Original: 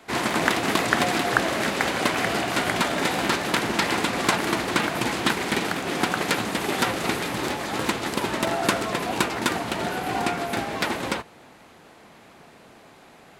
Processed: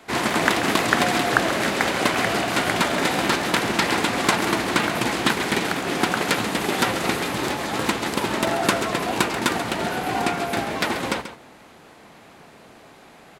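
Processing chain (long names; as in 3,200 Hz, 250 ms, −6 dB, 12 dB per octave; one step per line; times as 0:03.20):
single-tap delay 136 ms −11.5 dB
level +2 dB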